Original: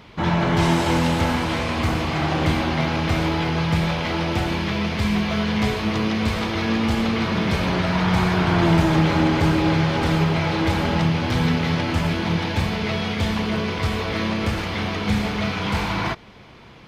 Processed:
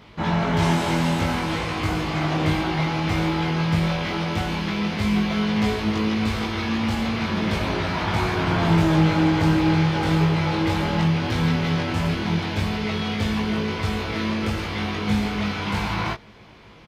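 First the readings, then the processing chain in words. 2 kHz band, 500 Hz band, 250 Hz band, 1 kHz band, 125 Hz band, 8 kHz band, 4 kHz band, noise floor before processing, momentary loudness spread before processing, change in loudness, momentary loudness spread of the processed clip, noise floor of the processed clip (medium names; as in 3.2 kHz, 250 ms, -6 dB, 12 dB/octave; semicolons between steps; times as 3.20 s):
-2.0 dB, -2.5 dB, -1.0 dB, -1.5 dB, -1.0 dB, -2.0 dB, -2.0 dB, -44 dBFS, 5 LU, -1.5 dB, 6 LU, -45 dBFS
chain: doubling 19 ms -2 dB; trim -4 dB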